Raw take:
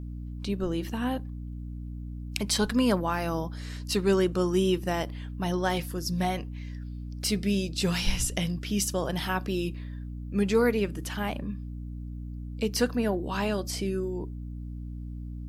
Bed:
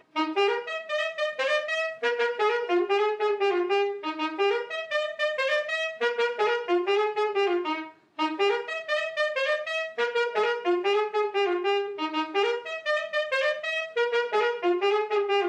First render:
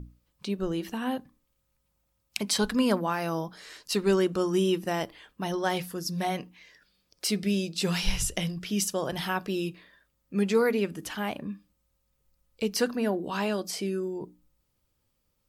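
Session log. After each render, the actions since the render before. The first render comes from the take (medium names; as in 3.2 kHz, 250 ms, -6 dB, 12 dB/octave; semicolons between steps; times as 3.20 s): hum notches 60/120/180/240/300 Hz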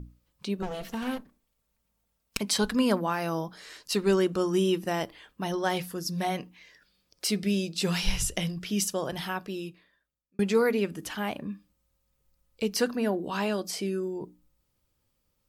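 0.62–2.39 s: comb filter that takes the minimum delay 4.4 ms; 8.86–10.39 s: fade out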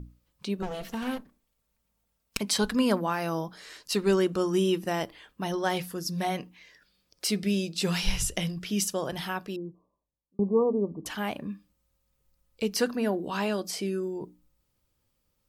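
9.56–11.06 s: brick-wall FIR low-pass 1.2 kHz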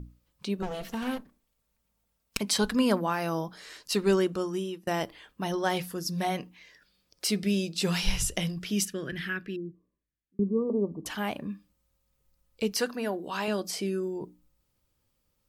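4.13–4.87 s: fade out, to -21 dB; 8.85–10.70 s: FFT filter 370 Hz 0 dB, 850 Hz -23 dB, 1.7 kHz +7 dB, 3.7 kHz -6 dB, 6.2 kHz -12 dB; 12.72–13.48 s: bass shelf 350 Hz -8.5 dB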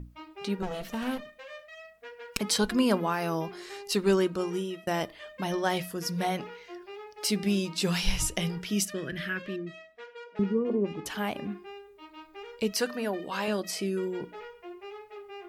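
add bed -19.5 dB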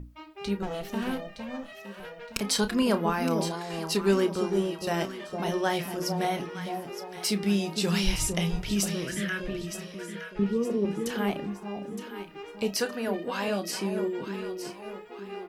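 doubling 30 ms -11 dB; echo whose repeats swap between lows and highs 458 ms, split 950 Hz, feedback 60%, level -5.5 dB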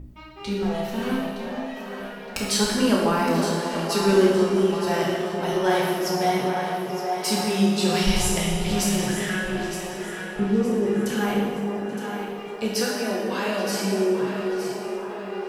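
band-passed feedback delay 831 ms, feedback 72%, band-pass 920 Hz, level -6.5 dB; plate-style reverb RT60 1.5 s, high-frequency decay 0.9×, DRR -3.5 dB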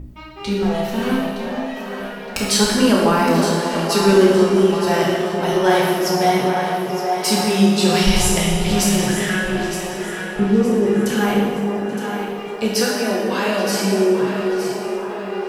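trim +6 dB; peak limiter -3 dBFS, peak gain reduction 2 dB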